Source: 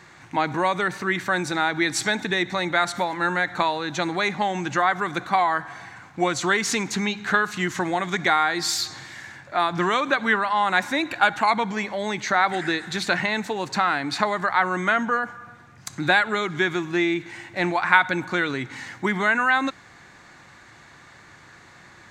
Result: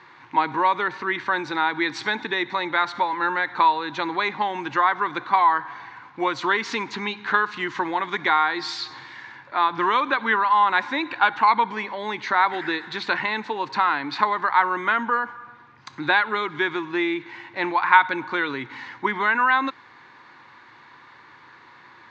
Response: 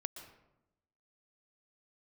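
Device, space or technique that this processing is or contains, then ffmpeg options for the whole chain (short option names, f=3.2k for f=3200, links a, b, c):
kitchen radio: -af "highpass=160,equalizer=f=180:t=q:w=4:g=-10,equalizer=f=660:t=q:w=4:g=-9,equalizer=f=980:t=q:w=4:g=10,lowpass=f=4.4k:w=0.5412,lowpass=f=4.4k:w=1.3066,volume=-1dB"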